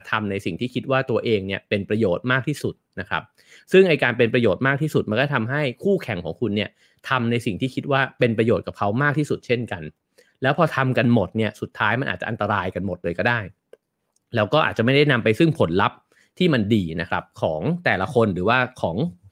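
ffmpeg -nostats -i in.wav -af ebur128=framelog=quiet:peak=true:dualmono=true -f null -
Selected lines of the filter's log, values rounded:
Integrated loudness:
  I:         -18.5 LUFS
  Threshold: -28.9 LUFS
Loudness range:
  LRA:         3.3 LU
  Threshold: -38.8 LUFS
  LRA low:   -20.5 LUFS
  LRA high:  -17.2 LUFS
True peak:
  Peak:       -2.6 dBFS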